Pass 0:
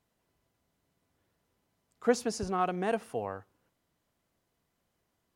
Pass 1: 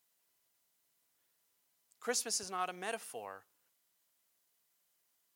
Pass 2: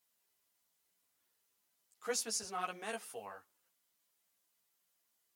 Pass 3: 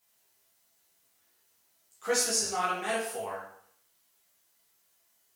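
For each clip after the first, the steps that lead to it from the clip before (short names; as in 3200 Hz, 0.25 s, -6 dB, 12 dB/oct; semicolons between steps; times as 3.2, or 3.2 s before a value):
tilt +4.5 dB/oct; gain -7 dB
ensemble effect; gain +1.5 dB
plate-style reverb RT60 0.62 s, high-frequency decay 0.8×, DRR -4 dB; gain +5 dB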